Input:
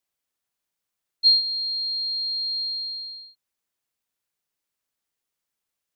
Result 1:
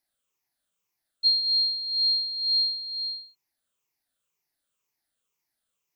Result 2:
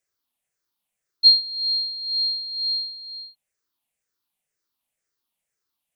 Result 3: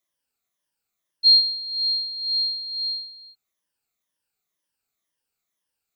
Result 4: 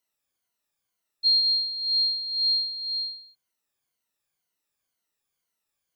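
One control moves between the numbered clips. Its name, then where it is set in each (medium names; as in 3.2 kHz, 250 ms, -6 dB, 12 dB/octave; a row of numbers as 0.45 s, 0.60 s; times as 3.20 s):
drifting ripple filter, ripples per octave: 0.76, 0.52, 1.2, 1.9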